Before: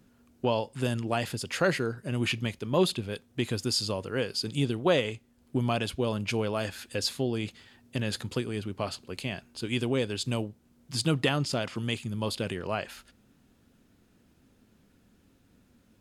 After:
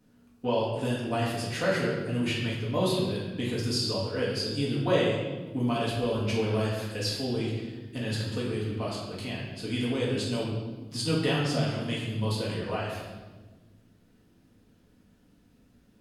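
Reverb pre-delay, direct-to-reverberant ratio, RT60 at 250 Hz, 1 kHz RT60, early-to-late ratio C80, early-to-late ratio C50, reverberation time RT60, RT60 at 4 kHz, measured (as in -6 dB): 4 ms, -7.0 dB, 2.0 s, 1.2 s, 3.5 dB, 1.0 dB, 1.3 s, 1.0 s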